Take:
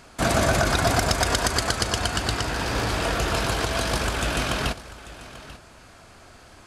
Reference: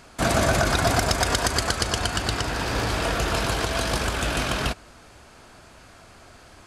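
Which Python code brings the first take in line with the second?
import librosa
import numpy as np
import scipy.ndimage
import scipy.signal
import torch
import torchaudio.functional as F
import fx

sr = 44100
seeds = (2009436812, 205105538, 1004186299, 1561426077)

y = fx.fix_echo_inverse(x, sr, delay_ms=840, level_db=-17.0)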